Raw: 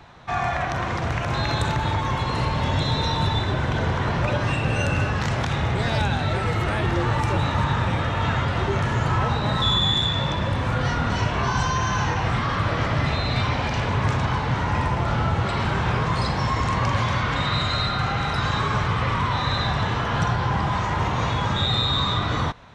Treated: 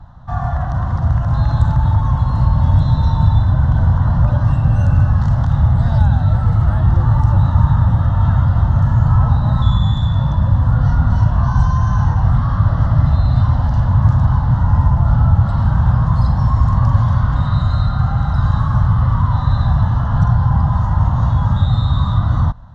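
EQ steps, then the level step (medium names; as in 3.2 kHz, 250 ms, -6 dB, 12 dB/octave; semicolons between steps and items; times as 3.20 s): RIAA curve playback; static phaser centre 980 Hz, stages 4; 0.0 dB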